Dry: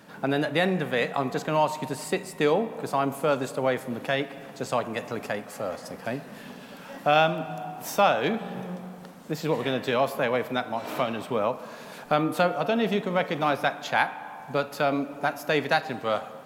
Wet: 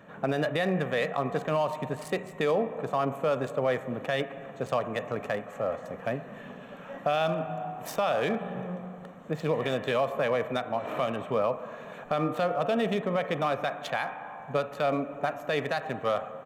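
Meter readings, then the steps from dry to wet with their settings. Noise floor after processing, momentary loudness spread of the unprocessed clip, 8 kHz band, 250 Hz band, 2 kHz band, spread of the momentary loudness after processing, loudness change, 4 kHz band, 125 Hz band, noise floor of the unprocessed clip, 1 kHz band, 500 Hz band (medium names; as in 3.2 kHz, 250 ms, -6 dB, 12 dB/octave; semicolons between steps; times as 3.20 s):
-45 dBFS, 13 LU, -8.5 dB, -3.5 dB, -5.0 dB, 9 LU, -3.0 dB, -5.5 dB, -1.5 dB, -44 dBFS, -4.5 dB, -1.5 dB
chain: local Wiener filter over 9 samples; comb 1.7 ms, depth 35%; peak limiter -17.5 dBFS, peak gain reduction 9.5 dB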